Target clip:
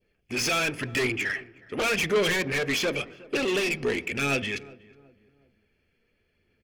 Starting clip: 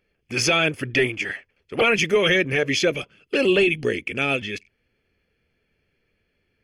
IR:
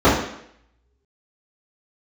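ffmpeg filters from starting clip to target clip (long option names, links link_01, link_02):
-filter_complex "[0:a]adynamicequalizer=threshold=0.0251:dfrequency=1600:dqfactor=0.74:tfrequency=1600:tqfactor=0.74:attack=5:release=100:ratio=0.375:range=2.5:mode=boostabove:tftype=bell,asoftclip=type=tanh:threshold=-22dB,aphaser=in_gain=1:out_gain=1:delay=4.5:decay=0.26:speed=0.92:type=sinusoidal,asplit=2[link_01][link_02];[link_02]adelay=367,lowpass=frequency=1000:poles=1,volume=-20dB,asplit=2[link_03][link_04];[link_04]adelay=367,lowpass=frequency=1000:poles=1,volume=0.44,asplit=2[link_05][link_06];[link_06]adelay=367,lowpass=frequency=1000:poles=1,volume=0.44[link_07];[link_01][link_03][link_05][link_07]amix=inputs=4:normalize=0,asplit=2[link_08][link_09];[1:a]atrim=start_sample=2205,asetrate=35721,aresample=44100[link_10];[link_09][link_10]afir=irnorm=-1:irlink=0,volume=-42dB[link_11];[link_08][link_11]amix=inputs=2:normalize=0,volume=-1.5dB"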